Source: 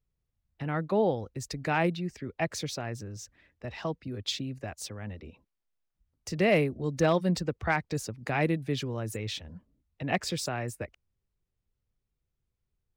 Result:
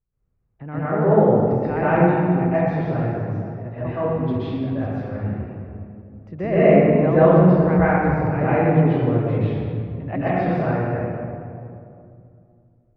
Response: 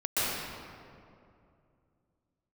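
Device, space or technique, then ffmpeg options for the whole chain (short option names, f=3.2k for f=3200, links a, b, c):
stairwell: -filter_complex "[0:a]lowpass=1.5k,bass=f=250:g=1,treble=f=4k:g=-13[a];[1:a]atrim=start_sample=2205[b];[a][b]afir=irnorm=-1:irlink=0"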